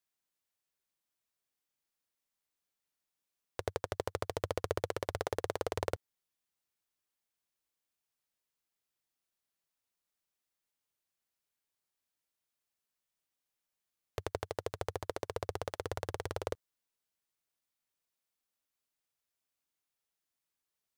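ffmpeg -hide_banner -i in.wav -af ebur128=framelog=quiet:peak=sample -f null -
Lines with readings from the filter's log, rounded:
Integrated loudness:
  I:         -39.5 LUFS
  Threshold: -49.5 LUFS
Loudness range:
  LRA:        10.9 LU
  Threshold: -62.3 LUFS
  LRA low:   -49.6 LUFS
  LRA high:  -38.7 LUFS
Sample peak:
  Peak:      -15.5 dBFS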